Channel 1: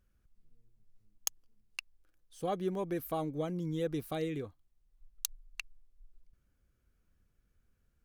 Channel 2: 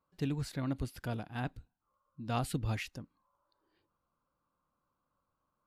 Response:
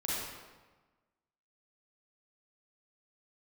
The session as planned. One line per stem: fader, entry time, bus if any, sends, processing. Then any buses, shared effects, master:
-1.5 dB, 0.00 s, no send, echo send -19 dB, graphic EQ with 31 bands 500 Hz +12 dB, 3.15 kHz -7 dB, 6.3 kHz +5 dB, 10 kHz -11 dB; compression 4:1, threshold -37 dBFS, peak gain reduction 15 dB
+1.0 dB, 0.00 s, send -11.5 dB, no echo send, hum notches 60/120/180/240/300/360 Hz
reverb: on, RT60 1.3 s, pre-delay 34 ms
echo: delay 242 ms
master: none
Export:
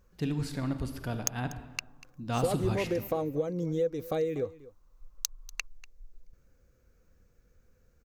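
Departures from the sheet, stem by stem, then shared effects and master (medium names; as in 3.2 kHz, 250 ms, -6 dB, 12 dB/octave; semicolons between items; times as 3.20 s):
stem 1 -1.5 dB -> +8.5 dB; stem 2: missing hum notches 60/120/180/240/300/360 Hz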